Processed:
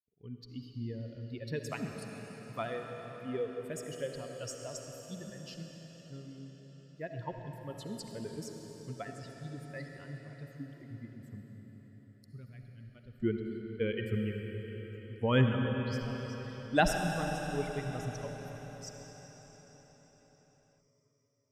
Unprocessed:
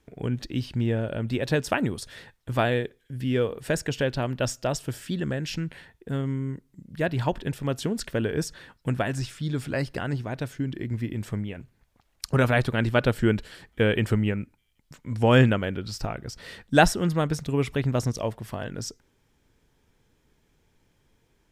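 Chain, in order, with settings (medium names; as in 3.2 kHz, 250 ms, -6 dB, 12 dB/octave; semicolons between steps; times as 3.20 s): expander on every frequency bin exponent 2; 11.41–13.20 s: amplifier tone stack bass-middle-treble 10-0-1; reverberation RT60 5.4 s, pre-delay 25 ms, DRR 2.5 dB; trim -6.5 dB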